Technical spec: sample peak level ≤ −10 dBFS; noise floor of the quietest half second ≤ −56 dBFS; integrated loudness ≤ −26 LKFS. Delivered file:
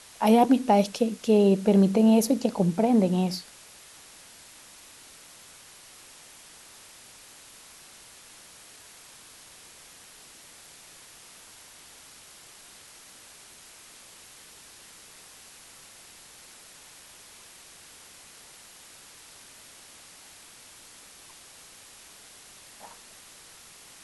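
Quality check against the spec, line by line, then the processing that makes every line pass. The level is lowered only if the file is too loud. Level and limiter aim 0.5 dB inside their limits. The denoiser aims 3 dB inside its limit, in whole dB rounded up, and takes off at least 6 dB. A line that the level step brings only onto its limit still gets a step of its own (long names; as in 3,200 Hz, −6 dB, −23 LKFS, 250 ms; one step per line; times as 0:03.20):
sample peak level −8.0 dBFS: out of spec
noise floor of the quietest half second −50 dBFS: out of spec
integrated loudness −22.5 LKFS: out of spec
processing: broadband denoise 6 dB, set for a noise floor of −50 dBFS
level −4 dB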